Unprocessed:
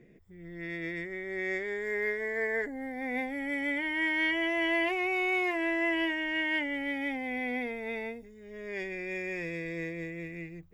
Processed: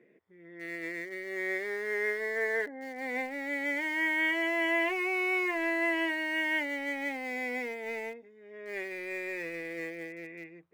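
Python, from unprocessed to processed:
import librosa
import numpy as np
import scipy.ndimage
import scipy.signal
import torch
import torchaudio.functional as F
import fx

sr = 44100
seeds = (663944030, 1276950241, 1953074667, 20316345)

p1 = fx.bandpass_edges(x, sr, low_hz=370.0, high_hz=2500.0)
p2 = fx.notch(p1, sr, hz=720.0, q=12.0)
p3 = np.where(np.abs(p2) >= 10.0 ** (-36.0 / 20.0), p2, 0.0)
y = p2 + (p3 * librosa.db_to_amplitude(-11.0))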